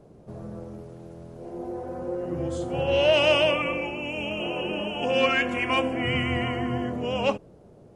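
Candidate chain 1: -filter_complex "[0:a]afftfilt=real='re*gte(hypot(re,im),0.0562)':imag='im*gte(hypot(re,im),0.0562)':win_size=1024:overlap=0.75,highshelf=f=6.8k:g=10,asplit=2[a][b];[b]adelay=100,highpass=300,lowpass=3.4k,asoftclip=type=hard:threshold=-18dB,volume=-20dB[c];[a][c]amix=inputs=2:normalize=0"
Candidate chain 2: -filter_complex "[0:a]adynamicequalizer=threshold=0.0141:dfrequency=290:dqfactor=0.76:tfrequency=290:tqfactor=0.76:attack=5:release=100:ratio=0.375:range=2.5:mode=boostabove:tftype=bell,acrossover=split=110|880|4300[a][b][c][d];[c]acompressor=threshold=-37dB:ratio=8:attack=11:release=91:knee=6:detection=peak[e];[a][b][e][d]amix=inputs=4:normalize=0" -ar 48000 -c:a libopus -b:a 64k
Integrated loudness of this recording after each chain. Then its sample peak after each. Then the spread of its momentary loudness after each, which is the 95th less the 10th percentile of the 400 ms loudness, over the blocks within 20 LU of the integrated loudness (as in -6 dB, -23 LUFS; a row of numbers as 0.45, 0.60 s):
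-25.0, -25.0 LUFS; -9.0, -9.5 dBFS; 18, 19 LU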